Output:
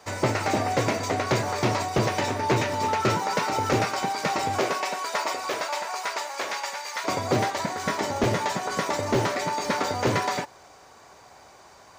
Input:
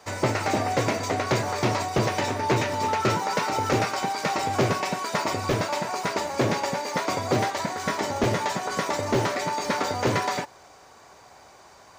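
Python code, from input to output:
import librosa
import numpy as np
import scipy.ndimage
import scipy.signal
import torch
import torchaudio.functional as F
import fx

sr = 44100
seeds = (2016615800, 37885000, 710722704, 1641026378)

y = fx.highpass(x, sr, hz=fx.line((4.58, 360.0), (7.03, 1200.0)), slope=12, at=(4.58, 7.03), fade=0.02)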